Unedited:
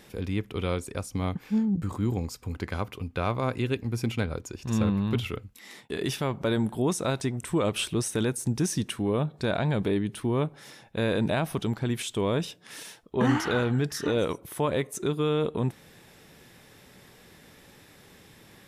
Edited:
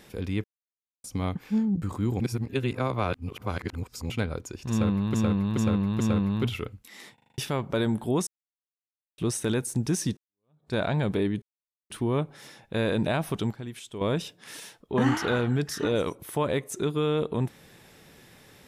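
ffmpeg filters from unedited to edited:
-filter_complex "[0:a]asplit=20[s0][s1][s2][s3][s4][s5][s6][s7][s8][s9][s10][s11][s12][s13][s14][s15][s16][s17][s18][s19];[s0]atrim=end=0.44,asetpts=PTS-STARTPTS,afade=t=out:st=0.436:d=0.004:c=hsin[s20];[s1]atrim=start=0.44:end=1.04,asetpts=PTS-STARTPTS,volume=0[s21];[s2]atrim=start=1.04:end=2.202,asetpts=PTS-STARTPTS,afade=t=in:d=0.004:c=hsin[s22];[s3]atrim=start=2.198:end=4.102,asetpts=PTS-STARTPTS,areverse[s23];[s4]atrim=start=4.098:end=5.142[s24];[s5]atrim=start=4.708:end=5.142[s25];[s6]atrim=start=4.708:end=5.142[s26];[s7]atrim=start=4.708:end=5.892[s27];[s8]atrim=start=5.848:end=5.892[s28];[s9]atrim=start=5.848:end=5.892[s29];[s10]atrim=start=5.848:end=5.892[s30];[s11]atrim=start=5.848:end=5.892[s31];[s12]atrim=start=5.848:end=5.892[s32];[s13]atrim=start=6.088:end=6.98,asetpts=PTS-STARTPTS,afade=t=out:st=0.888:d=0.004:c=hsin[s33];[s14]atrim=start=6.98:end=7.89,asetpts=PTS-STARTPTS,volume=0[s34];[s15]atrim=start=7.89:end=8.88,asetpts=PTS-STARTPTS,afade=t=in:d=0.004:c=hsin,afade=t=out:st=0.986:d=0.004:c=hsin[s35];[s16]atrim=start=8.88:end=10.13,asetpts=PTS-STARTPTS,afade=t=in:d=0.57:c=exp,afade=t=out:st=1.246:d=0.004:c=hsin,apad=pad_dur=0.48[s36];[s17]atrim=start=10.13:end=11.762,asetpts=PTS-STARTPTS,afade=t=in:d=0.004:c=hsin[s37];[s18]atrim=start=11.758:end=12.242,asetpts=PTS-STARTPTS,volume=0.335[s38];[s19]atrim=start=12.238[s39];[s20][s21][s22]concat=n=3:v=0:a=1[s40];[s40][s23]acrossfade=d=0.004:c1=hsin:c2=hsin[s41];[s41][s24]acrossfade=d=0.004:c1=hsin:c2=hsin[s42];[s42][s25]acrossfade=d=0.004:c1=hsin:c2=hsin[s43];[s43][s26]acrossfade=d=0.004:c1=hsin:c2=hsin[s44];[s44][s27]acrossfade=d=0.004:c1=hsin:c2=hsin[s45];[s45][s28]acrossfade=d=0.004:c1=hsin:c2=hsin[s46];[s46][s29]acrossfade=d=0.004:c1=hsin:c2=hsin[s47];[s47][s30]acrossfade=d=0.004:c1=hsin:c2=hsin[s48];[s48][s31]acrossfade=d=0.004:c1=hsin:c2=hsin[s49];[s49][s32]acrossfade=d=0.004:c1=hsin:c2=hsin[s50];[s33][s34][s35][s36][s37]concat=n=5:v=0:a=1[s51];[s50][s51]acrossfade=d=0.004:c1=hsin:c2=hsin[s52];[s52][s38]acrossfade=d=0.004:c1=hsin:c2=hsin[s53];[s53][s39]acrossfade=d=0.004:c1=hsin:c2=hsin"

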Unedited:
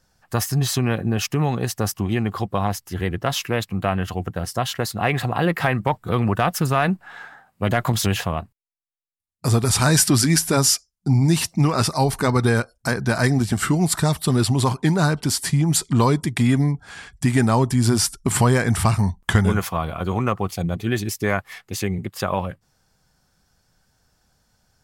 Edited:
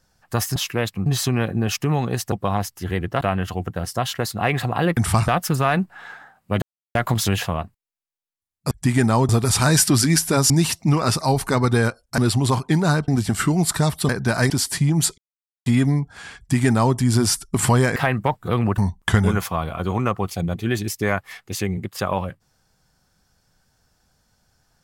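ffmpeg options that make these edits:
-filter_complex "[0:a]asplit=19[s0][s1][s2][s3][s4][s5][s6][s7][s8][s9][s10][s11][s12][s13][s14][s15][s16][s17][s18];[s0]atrim=end=0.562[s19];[s1]atrim=start=3.308:end=3.812[s20];[s2]atrim=start=0.558:end=1.822[s21];[s3]atrim=start=2.418:end=3.312[s22];[s4]atrim=start=3.808:end=5.572[s23];[s5]atrim=start=18.678:end=18.992[s24];[s6]atrim=start=6.388:end=7.73,asetpts=PTS-STARTPTS,afade=t=out:st=1.338:d=0.004:c=hsin,apad=pad_dur=0.33[s25];[s7]atrim=start=7.73:end=9.492,asetpts=PTS-STARTPTS,afade=t=in:d=0.004:c=hsin[s26];[s8]atrim=start=17.098:end=17.682[s27];[s9]atrim=start=9.488:end=10.702[s28];[s10]atrim=start=11.218:end=12.902[s29];[s11]atrim=start=14.318:end=15.222[s30];[s12]atrim=start=13.308:end=14.322[s31];[s13]atrim=start=12.898:end=13.312[s32];[s14]atrim=start=15.218:end=15.9,asetpts=PTS-STARTPTS,afade=t=out:st=0.678:d=0.004:c=hsin[s33];[s15]atrim=start=15.9:end=16.38,asetpts=PTS-STARTPTS,volume=0[s34];[s16]atrim=start=16.38:end=18.682,asetpts=PTS-STARTPTS,afade=t=in:d=0.004:c=hsin[s35];[s17]atrim=start=5.568:end=6.392[s36];[s18]atrim=start=18.988[s37];[s19][s20]acrossfade=d=0.004:c1=hsin:c2=hsin[s38];[s38][s21]acrossfade=d=0.004:c1=hsin:c2=hsin[s39];[s39][s22]acrossfade=d=0.004:c1=hsin:c2=hsin[s40];[s40][s23]acrossfade=d=0.004:c1=hsin:c2=hsin[s41];[s41][s24]acrossfade=d=0.004:c1=hsin:c2=hsin[s42];[s25][s26]concat=n=2:v=0:a=1[s43];[s42][s43]acrossfade=d=0.004:c1=hsin:c2=hsin[s44];[s44][s27]acrossfade=d=0.004:c1=hsin:c2=hsin[s45];[s45][s28]acrossfade=d=0.004:c1=hsin:c2=hsin[s46];[s46][s29]acrossfade=d=0.004:c1=hsin:c2=hsin[s47];[s47][s30]acrossfade=d=0.004:c1=hsin:c2=hsin[s48];[s48][s31]acrossfade=d=0.004:c1=hsin:c2=hsin[s49];[s49][s32]acrossfade=d=0.004:c1=hsin:c2=hsin[s50];[s33][s34][s35]concat=n=3:v=0:a=1[s51];[s50][s51]acrossfade=d=0.004:c1=hsin:c2=hsin[s52];[s52][s36]acrossfade=d=0.004:c1=hsin:c2=hsin[s53];[s53][s37]acrossfade=d=0.004:c1=hsin:c2=hsin"

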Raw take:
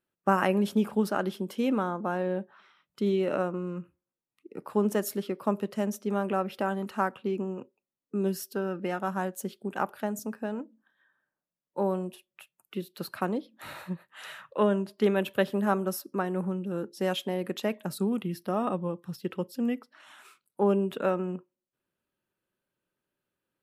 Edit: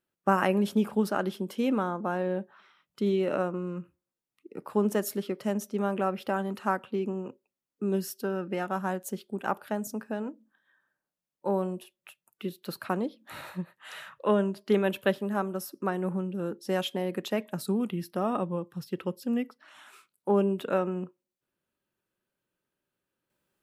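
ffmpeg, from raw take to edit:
-filter_complex "[0:a]asplit=4[s0][s1][s2][s3];[s0]atrim=end=5.402[s4];[s1]atrim=start=5.718:end=15.472[s5];[s2]atrim=start=15.468:end=16.012,asetpts=PTS-STARTPTS,volume=0.668[s6];[s3]atrim=start=16.008[s7];[s4][s5]acrossfade=d=0.004:c1=hsin:c2=hsin[s8];[s8][s6]acrossfade=d=0.004:c1=hsin:c2=hsin[s9];[s9][s7]acrossfade=d=0.004:c1=hsin:c2=hsin"

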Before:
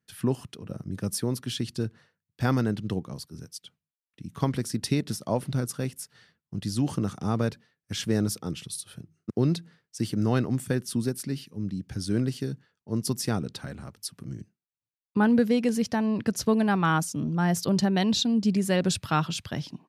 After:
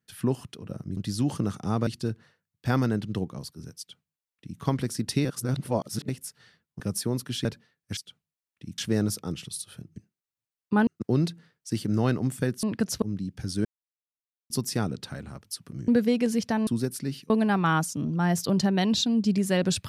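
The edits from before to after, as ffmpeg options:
-filter_complex "[0:a]asplit=18[s0][s1][s2][s3][s4][s5][s6][s7][s8][s9][s10][s11][s12][s13][s14][s15][s16][s17];[s0]atrim=end=0.972[s18];[s1]atrim=start=6.548:end=7.452[s19];[s2]atrim=start=1.618:end=5.002[s20];[s3]atrim=start=4.998:end=5.842,asetpts=PTS-STARTPTS,areverse[s21];[s4]atrim=start=5.838:end=6.552[s22];[s5]atrim=start=0.968:end=1.622[s23];[s6]atrim=start=7.448:end=7.972[s24];[s7]atrim=start=3.538:end=4.352[s25];[s8]atrim=start=7.968:end=9.152[s26];[s9]atrim=start=14.398:end=15.312[s27];[s10]atrim=start=9.148:end=10.912[s28];[s11]atrim=start=16.098:end=16.492[s29];[s12]atrim=start=11.538:end=12.17,asetpts=PTS-STARTPTS,afade=t=out:st=0.628:d=0.004:c=hsin[s30];[s13]atrim=start=12.17:end=13.02,asetpts=PTS-STARTPTS,volume=0[s31];[s14]atrim=start=13.02:end=14.402,asetpts=PTS-STARTPTS,afade=t=in:d=0.004:c=hsin[s32];[s15]atrim=start=15.308:end=16.102[s33];[s16]atrim=start=10.908:end=11.542[s34];[s17]atrim=start=16.488[s35];[s18][s19]acrossfade=d=0.004:c1=hsin:c2=hsin[s36];[s36][s20]acrossfade=d=0.004:c1=hsin:c2=hsin[s37];[s37][s21]acrossfade=d=0.004:c1=hsin:c2=hsin[s38];[s38][s22]acrossfade=d=0.004:c1=hsin:c2=hsin[s39];[s39][s23]acrossfade=d=0.004:c1=hsin:c2=hsin[s40];[s40][s24]acrossfade=d=0.004:c1=hsin:c2=hsin[s41];[s41][s25]acrossfade=d=0.004:c1=hsin:c2=hsin[s42];[s42][s26]acrossfade=d=0.004:c1=hsin:c2=hsin[s43];[s43][s27]acrossfade=d=0.004:c1=hsin:c2=hsin[s44];[s44][s28]acrossfade=d=0.004:c1=hsin:c2=hsin[s45];[s45][s29]acrossfade=d=0.004:c1=hsin:c2=hsin[s46];[s30][s31][s32]concat=n=3:v=0:a=1[s47];[s46][s47]acrossfade=d=0.004:c1=hsin:c2=hsin[s48];[s48][s33]acrossfade=d=0.004:c1=hsin:c2=hsin[s49];[s49][s34]acrossfade=d=0.004:c1=hsin:c2=hsin[s50];[s50][s35]acrossfade=d=0.004:c1=hsin:c2=hsin"

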